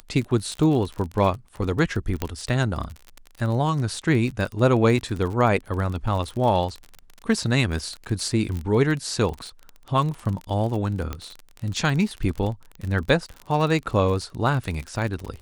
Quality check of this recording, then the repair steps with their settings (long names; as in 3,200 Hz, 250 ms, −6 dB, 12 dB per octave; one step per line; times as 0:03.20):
surface crackle 31 per second −28 dBFS
0:02.22: click −11 dBFS
0:08.57: click −20 dBFS
0:11.13: click −16 dBFS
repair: click removal